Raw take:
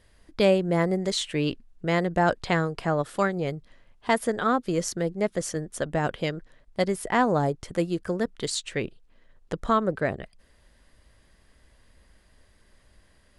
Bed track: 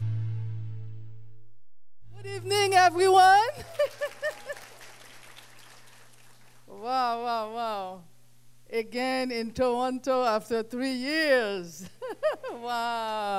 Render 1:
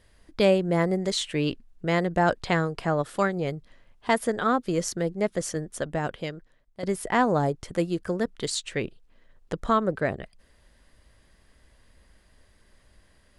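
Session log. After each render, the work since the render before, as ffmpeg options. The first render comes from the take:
-filter_complex "[0:a]asplit=2[a][b];[a]atrim=end=6.83,asetpts=PTS-STARTPTS,afade=t=out:st=5.6:d=1.23:silence=0.211349[c];[b]atrim=start=6.83,asetpts=PTS-STARTPTS,afade=t=in:d=0.004:c=hsin:silence=0.211349[d];[c][d]concat=n=2:v=0:a=1"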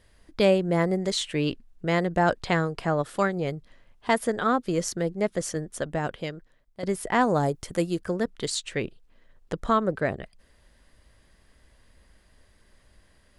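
-filter_complex "[0:a]asettb=1/sr,asplit=3[a][b][c];[a]atrim=end=7.214[d];[b]atrim=start=7.21:end=8,asetpts=PTS-STARTPTS,afade=t=in:d=0.004:c=qsin,afade=t=out:st=0.786:d=0.004:c=qsin,highshelf=f=7.2k:g=10[e];[c]atrim=start=7.996[f];[d][e]acrossfade=d=0.004:c1=hsin:c2=qsin[g];[g][f]acrossfade=d=0.004:c1=qsin:c2=hsin"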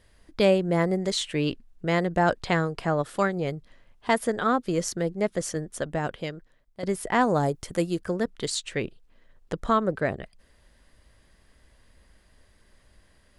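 -af anull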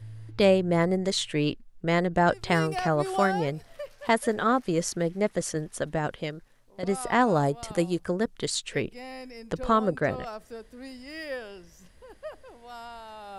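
-filter_complex "[1:a]volume=-12.5dB[a];[0:a][a]amix=inputs=2:normalize=0"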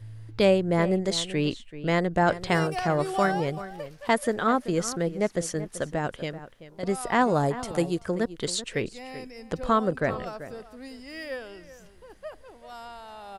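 -filter_complex "[0:a]asplit=2[a][b];[b]adelay=384.8,volume=-14dB,highshelf=f=4k:g=-8.66[c];[a][c]amix=inputs=2:normalize=0"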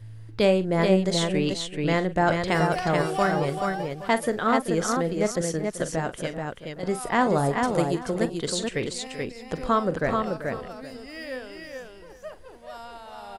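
-af "aecho=1:1:43|432:0.237|0.631"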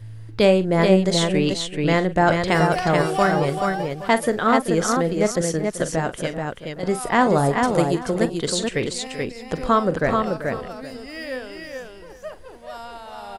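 -af "volume=4.5dB"

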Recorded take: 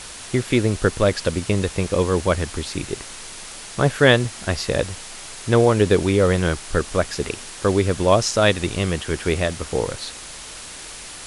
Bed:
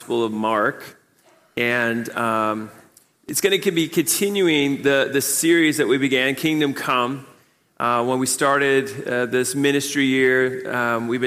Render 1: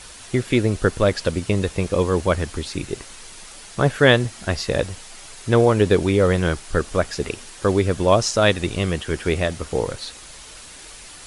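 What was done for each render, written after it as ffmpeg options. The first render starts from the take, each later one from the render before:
-af "afftdn=nr=6:nf=-37"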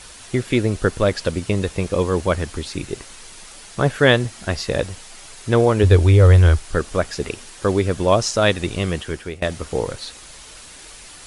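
-filter_complex "[0:a]asettb=1/sr,asplit=3[a][b][c];[a]atrim=end=5.834[d];[b]atrim=start=5.83:end=6.65,asetpts=PTS-STARTPTS,afade=t=in:d=0.004:c=qsin,afade=t=out:st=0.816:d=0.004:c=qsin,lowshelf=f=120:t=q:w=3:g=8[e];[c]atrim=start=6.646[f];[d][e]acrossfade=d=0.004:c1=hsin:c2=qsin[g];[g][f]acrossfade=d=0.004:c1=qsin:c2=hsin,asplit=2[h][i];[h]atrim=end=9.42,asetpts=PTS-STARTPTS,afade=t=out:st=9:d=0.42:silence=0.0944061[j];[i]atrim=start=9.42,asetpts=PTS-STARTPTS,afade=t=in:d=0.004:c=hsin:silence=0.0944061[k];[j][k]concat=n=2:v=0:a=1"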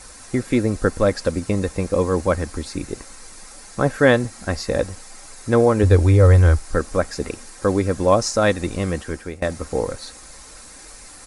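-af "equalizer=f=3.1k:t=o:w=0.64:g=-12,aecho=1:1:3.8:0.34"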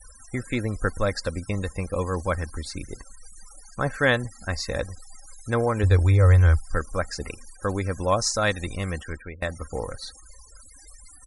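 -af "afftfilt=real='re*gte(hypot(re,im),0.0158)':imag='im*gte(hypot(re,im),0.0158)':win_size=1024:overlap=0.75,equalizer=f=330:t=o:w=2.7:g=-10.5"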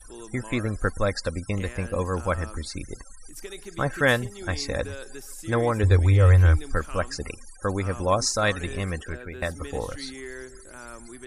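-filter_complex "[1:a]volume=-22dB[a];[0:a][a]amix=inputs=2:normalize=0"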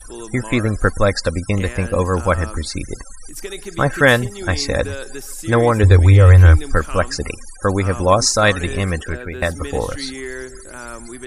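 -af "volume=9dB,alimiter=limit=-1dB:level=0:latency=1"

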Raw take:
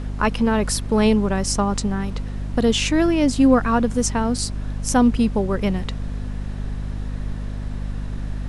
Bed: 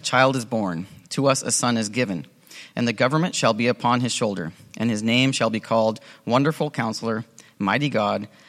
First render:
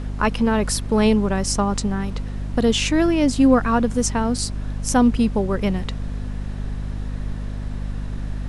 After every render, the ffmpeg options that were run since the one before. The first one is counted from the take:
-af anull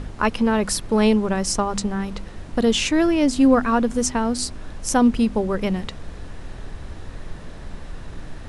-af "bandreject=f=50:t=h:w=4,bandreject=f=100:t=h:w=4,bandreject=f=150:t=h:w=4,bandreject=f=200:t=h:w=4,bandreject=f=250:t=h:w=4"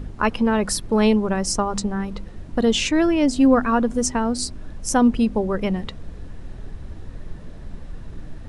-af "afftdn=nr=8:nf=-37"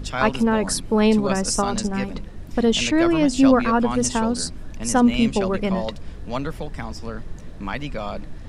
-filter_complex "[1:a]volume=-8.5dB[a];[0:a][a]amix=inputs=2:normalize=0"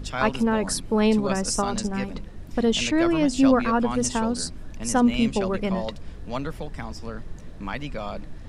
-af "volume=-3dB"

